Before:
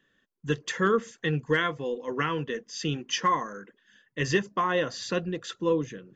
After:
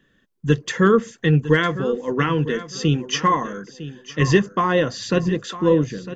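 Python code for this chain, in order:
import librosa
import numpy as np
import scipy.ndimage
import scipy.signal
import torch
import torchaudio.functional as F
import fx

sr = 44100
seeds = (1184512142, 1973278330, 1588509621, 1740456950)

y = fx.low_shelf(x, sr, hz=310.0, db=9.5)
y = fx.echo_feedback(y, sr, ms=954, feedback_pct=23, wet_db=-14.5)
y = y * 10.0 ** (5.0 / 20.0)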